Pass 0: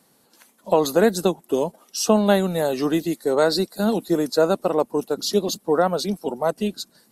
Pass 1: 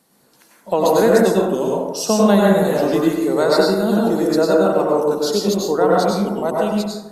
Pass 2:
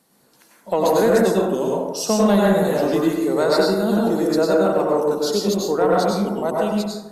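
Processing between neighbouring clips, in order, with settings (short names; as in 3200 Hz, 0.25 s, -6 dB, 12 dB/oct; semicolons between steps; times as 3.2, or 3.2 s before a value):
plate-style reverb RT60 1.1 s, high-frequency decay 0.35×, pre-delay 85 ms, DRR -4 dB; gain -1 dB
soft clip -4.5 dBFS, distortion -23 dB; gain -1.5 dB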